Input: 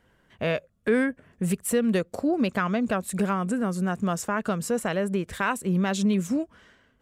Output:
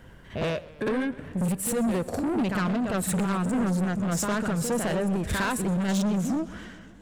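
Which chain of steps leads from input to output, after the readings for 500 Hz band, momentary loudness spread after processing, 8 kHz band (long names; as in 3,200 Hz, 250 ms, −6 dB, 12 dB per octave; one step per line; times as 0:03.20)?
−2.5 dB, 6 LU, +2.5 dB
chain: low-shelf EQ 170 Hz +8.5 dB
downward compressor, threshold −26 dBFS, peak gain reduction 10 dB
on a send: backwards echo 57 ms −7.5 dB
on the sum: soft clipping −30.5 dBFS, distortion −9 dB
shaped tremolo saw down 1.7 Hz, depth 35%
in parallel at −3.5 dB: gain into a clipping stage and back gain 34.5 dB
on the sum: feedback echo with a swinging delay time 125 ms, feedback 74%, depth 179 cents, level −20 dB
level +5.5 dB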